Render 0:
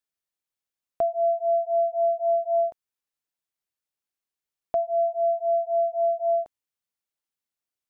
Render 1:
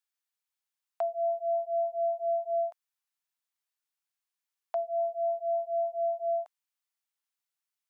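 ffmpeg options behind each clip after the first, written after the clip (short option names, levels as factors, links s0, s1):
-af "highpass=f=790:w=0.5412,highpass=f=790:w=1.3066"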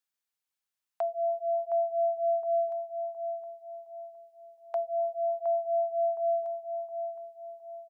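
-filter_complex "[0:a]asplit=2[s0][s1];[s1]adelay=715,lowpass=f=930:p=1,volume=0.562,asplit=2[s2][s3];[s3]adelay=715,lowpass=f=930:p=1,volume=0.47,asplit=2[s4][s5];[s5]adelay=715,lowpass=f=930:p=1,volume=0.47,asplit=2[s6][s7];[s7]adelay=715,lowpass=f=930:p=1,volume=0.47,asplit=2[s8][s9];[s9]adelay=715,lowpass=f=930:p=1,volume=0.47,asplit=2[s10][s11];[s11]adelay=715,lowpass=f=930:p=1,volume=0.47[s12];[s0][s2][s4][s6][s8][s10][s12]amix=inputs=7:normalize=0"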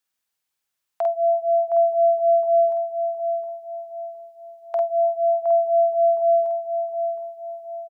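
-filter_complex "[0:a]asplit=2[s0][s1];[s1]adelay=49,volume=0.708[s2];[s0][s2]amix=inputs=2:normalize=0,volume=2"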